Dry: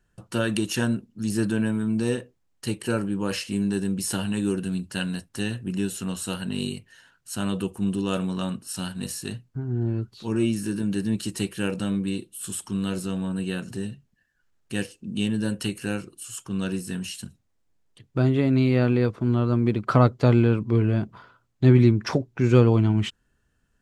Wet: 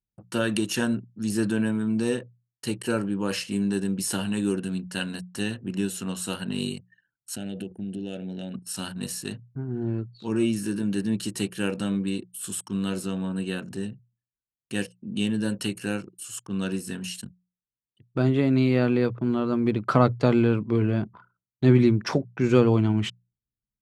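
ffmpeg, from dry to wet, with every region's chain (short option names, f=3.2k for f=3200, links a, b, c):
-filter_complex "[0:a]asettb=1/sr,asplit=3[a][b][c];[a]atrim=end=7.364[d];[b]atrim=start=7.36:end=8.54,asetpts=PTS-STARTPTS,afade=t=in:d=0.004:c=qsin,afade=t=out:st=1.176:d=0.004:c=qsin,highshelf=f=5.6k:g=-5.5,acompressor=threshold=-29dB:ratio=4:attack=3.2:release=140:knee=1:detection=peak,asuperstop=centerf=1100:order=4:qfactor=1.3[e];[c]atrim=start=8.536[f];[d][e]acrossfade=d=0.004:c1=hsin:c2=qsin[g];[g][f]acrossfade=d=0.004:c1=qsin:c2=hsin,anlmdn=0.1,highpass=110,bandreject=f=60:t=h:w=6,bandreject=f=120:t=h:w=6,bandreject=f=180:t=h:w=6"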